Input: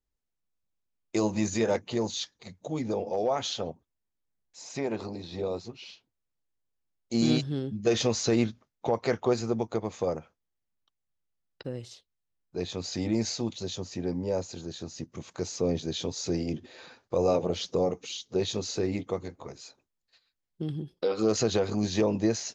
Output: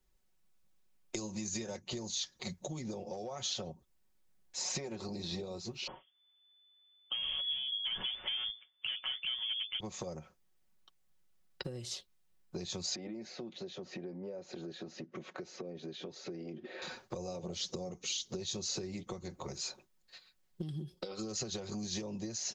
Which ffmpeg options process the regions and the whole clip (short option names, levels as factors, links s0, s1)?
-filter_complex "[0:a]asettb=1/sr,asplit=3[s0][s1][s2];[s0]atrim=end=5.874[s3];[s1]atrim=start=5.87:end=9.8,asetpts=PTS-STARTPTS,afade=t=in:d=0.004:c=qsin,afade=t=out:st=3.926:d=0.004:c=qsin,equalizer=f=990:w=6.1:g=-8,asoftclip=type=hard:threshold=0.0422,lowpass=f=3000:t=q:w=0.5098,lowpass=f=3000:t=q:w=0.6013,lowpass=f=3000:t=q:w=0.9,lowpass=f=3000:t=q:w=2.563,afreqshift=-3500[s4];[s2]atrim=start=9.796[s5];[s3][s4]acrossfade=d=0.004:c1=hsin:c2=qsin[s6];[s6][s5]acrossfade=d=0.004:c1=qsin:c2=hsin,asettb=1/sr,asplit=3[s7][s8][s9];[s7]atrim=end=12.954[s10];[s8]atrim=start=12.95:end=16.82,asetpts=PTS-STARTPTS,afade=t=in:d=0.004:c=qsin,afade=t=out:st=3.866:d=0.004:c=qsin,acompressor=threshold=0.0112:ratio=5:attack=3.2:release=140:knee=1:detection=peak,highpass=280,lowpass=2000,equalizer=f=970:t=o:w=0.62:g=-8[s11];[s9]atrim=start=16.816[s12];[s10][s11]acrossfade=d=0.004:c1=hsin:c2=qsin[s13];[s13][s12]acrossfade=d=0.004:c1=qsin:c2=hsin,acompressor=threshold=0.0141:ratio=4,aecho=1:1:5.4:0.55,acrossover=split=120|4400[s14][s15][s16];[s14]acompressor=threshold=0.00158:ratio=4[s17];[s15]acompressor=threshold=0.00282:ratio=4[s18];[s16]acompressor=threshold=0.00562:ratio=4[s19];[s17][s18][s19]amix=inputs=3:normalize=0,volume=2.66"